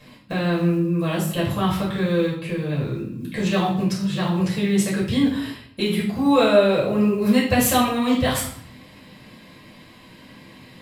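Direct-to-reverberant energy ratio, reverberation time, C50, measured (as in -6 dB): -7.0 dB, 0.60 s, 5.0 dB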